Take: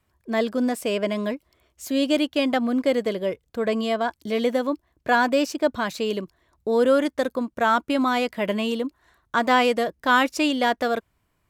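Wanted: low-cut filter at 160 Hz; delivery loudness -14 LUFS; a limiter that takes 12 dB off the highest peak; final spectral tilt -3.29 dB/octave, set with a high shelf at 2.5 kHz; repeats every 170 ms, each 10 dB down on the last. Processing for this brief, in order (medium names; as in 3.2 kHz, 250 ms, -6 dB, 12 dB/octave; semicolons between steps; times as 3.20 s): high-pass 160 Hz; treble shelf 2.5 kHz +6 dB; peak limiter -16.5 dBFS; feedback delay 170 ms, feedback 32%, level -10 dB; trim +12.5 dB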